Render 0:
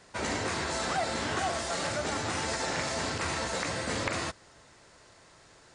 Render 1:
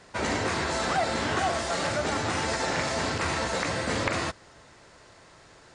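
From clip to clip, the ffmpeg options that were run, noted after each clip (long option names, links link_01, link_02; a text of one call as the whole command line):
ffmpeg -i in.wav -af "highshelf=frequency=5800:gain=-6.5,volume=4.5dB" out.wav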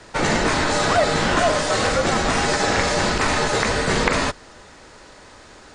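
ffmpeg -i in.wav -af "afreqshift=-70,volume=8.5dB" out.wav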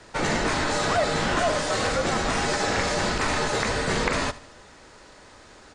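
ffmpeg -i in.wav -filter_complex "[0:a]asplit=2[link_01][link_02];[link_02]asoftclip=type=tanh:threshold=-12.5dB,volume=-3dB[link_03];[link_01][link_03]amix=inputs=2:normalize=0,aecho=1:1:77|154|231|308:0.126|0.0567|0.0255|0.0115,volume=-9dB" out.wav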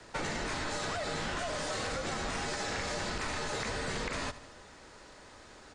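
ffmpeg -i in.wav -filter_complex "[0:a]acrossover=split=110|1700[link_01][link_02][link_03];[link_02]alimiter=limit=-21dB:level=0:latency=1[link_04];[link_01][link_04][link_03]amix=inputs=3:normalize=0,acompressor=threshold=-28dB:ratio=6,volume=-4dB" out.wav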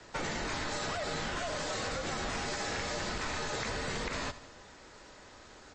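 ffmpeg -i in.wav -ar 22050 -c:a libmp3lame -b:a 32k out.mp3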